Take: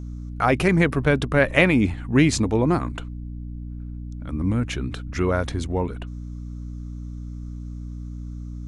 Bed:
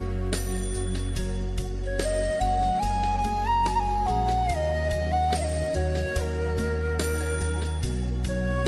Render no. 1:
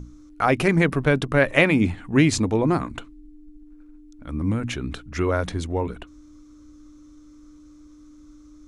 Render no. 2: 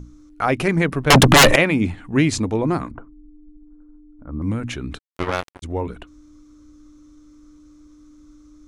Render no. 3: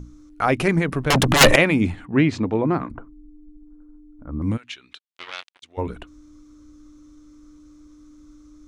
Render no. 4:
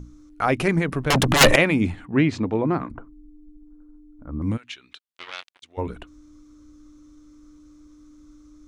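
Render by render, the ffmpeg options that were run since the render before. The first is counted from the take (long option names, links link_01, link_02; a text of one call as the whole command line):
ffmpeg -i in.wav -af "bandreject=frequency=60:width_type=h:width=6,bandreject=frequency=120:width_type=h:width=6,bandreject=frequency=180:width_type=h:width=6,bandreject=frequency=240:width_type=h:width=6" out.wav
ffmpeg -i in.wav -filter_complex "[0:a]asettb=1/sr,asplit=3[link_01][link_02][link_03];[link_01]atrim=end=1.104[link_04];[link_02]atrim=start=1.1:end=1.56,asetpts=PTS-STARTPTS,afade=type=in:duration=0.004:curve=qsin,afade=type=out:start_time=0.456:duration=0.004:curve=qsin,aeval=exprs='0.501*sin(PI/2*7.08*val(0)/0.501)':channel_layout=same[link_05];[link_03]atrim=start=1.556[link_06];[link_04][link_05]acrossfade=duration=0.004:curve1=hsin:curve2=qsin[link_07];[link_07][link_06]acrossfade=duration=0.004:curve1=qsin:curve2=hsin,asettb=1/sr,asplit=3[link_08][link_09][link_10];[link_08]atrim=end=2.914[link_11];[link_09]atrim=start=2.91:end=4.42,asetpts=PTS-STARTPTS,afade=type=in:duration=0.004:curve=qsin,afade=type=out:start_time=1.506:duration=0.004:curve=qsin,lowpass=frequency=1300:width=0.5412,lowpass=frequency=1300:width=1.3066[link_12];[link_10]atrim=start=4.416[link_13];[link_11][link_12]acrossfade=duration=0.004:curve1=hsin:curve2=qsin[link_14];[link_14][link_13]acrossfade=duration=0.004:curve1=qsin:curve2=hsin,asplit=3[link_15][link_16][link_17];[link_15]afade=type=out:start_time=4.97:duration=0.02[link_18];[link_16]acrusher=bits=2:mix=0:aa=0.5,afade=type=in:start_time=4.97:duration=0.02,afade=type=out:start_time=5.62:duration=0.02[link_19];[link_17]afade=type=in:start_time=5.62:duration=0.02[link_20];[link_18][link_19][link_20]amix=inputs=3:normalize=0" out.wav
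ffmpeg -i in.wav -filter_complex "[0:a]asettb=1/sr,asplit=3[link_01][link_02][link_03];[link_01]atrim=end=0.794[link_04];[link_02]atrim=start=0.79:end=1.41,asetpts=PTS-STARTPTS,afade=type=in:duration=0.004:curve=qsin,afade=type=out:start_time=0.616:duration=0.004:curve=qsin,acompressor=threshold=-17dB:ratio=3:attack=3.2:release=140:knee=1:detection=peak[link_05];[link_03]atrim=start=1.406[link_06];[link_04][link_05]acrossfade=duration=0.004:curve1=hsin:curve2=qsin[link_07];[link_07][link_06]acrossfade=duration=0.004:curve1=qsin:curve2=hsin,asettb=1/sr,asplit=3[link_08][link_09][link_10];[link_08]atrim=end=2.054[link_11];[link_09]atrim=start=2.05:end=2.9,asetpts=PTS-STARTPTS,afade=type=in:duration=0.004:curve=qsin,afade=type=out:start_time=0.846:duration=0.004:curve=qsin,highpass=110,lowpass=2800[link_12];[link_10]atrim=start=2.896[link_13];[link_11][link_12]acrossfade=duration=0.004:curve1=hsin:curve2=qsin[link_14];[link_14][link_13]acrossfade=duration=0.004:curve1=qsin:curve2=hsin,asplit=3[link_15][link_16][link_17];[link_15]afade=type=out:start_time=4.56:duration=0.02[link_18];[link_16]bandpass=frequency=3400:width_type=q:width=1.6,afade=type=in:start_time=4.56:duration=0.02,afade=type=out:start_time=5.77:duration=0.02[link_19];[link_17]afade=type=in:start_time=5.77:duration=0.02[link_20];[link_18][link_19][link_20]amix=inputs=3:normalize=0" out.wav
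ffmpeg -i in.wav -af "volume=-1.5dB" out.wav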